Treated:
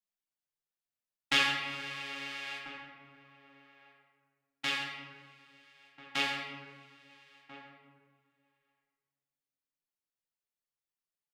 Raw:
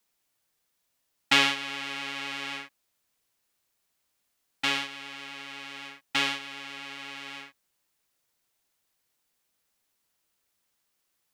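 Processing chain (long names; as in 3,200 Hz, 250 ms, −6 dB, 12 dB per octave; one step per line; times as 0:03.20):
noise gate −36 dBFS, range −14 dB
reverb reduction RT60 0.6 s
flanger 0.6 Hz, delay 5.3 ms, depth 3.4 ms, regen +54%
slap from a distant wall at 230 metres, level −13 dB
convolution reverb RT60 1.7 s, pre-delay 6 ms, DRR −1.5 dB
level −3.5 dB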